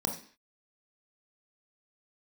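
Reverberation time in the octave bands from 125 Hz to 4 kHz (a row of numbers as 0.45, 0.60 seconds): 0.35 s, 0.45 s, 0.45 s, 0.45 s, 0.55 s, can't be measured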